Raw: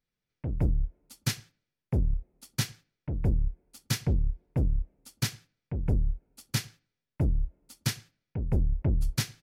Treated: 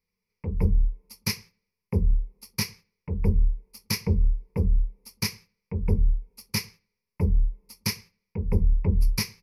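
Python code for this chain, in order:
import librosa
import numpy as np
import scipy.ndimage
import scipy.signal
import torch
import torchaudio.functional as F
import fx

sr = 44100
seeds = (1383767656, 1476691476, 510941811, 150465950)

y = fx.ripple_eq(x, sr, per_octave=0.85, db=16)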